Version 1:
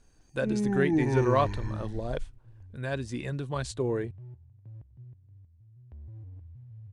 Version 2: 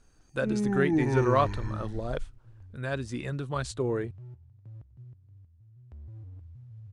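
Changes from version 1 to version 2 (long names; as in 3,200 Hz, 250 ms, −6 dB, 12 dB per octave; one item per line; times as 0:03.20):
second sound: remove high-frequency loss of the air 210 metres
master: add parametric band 1,300 Hz +9 dB 0.21 octaves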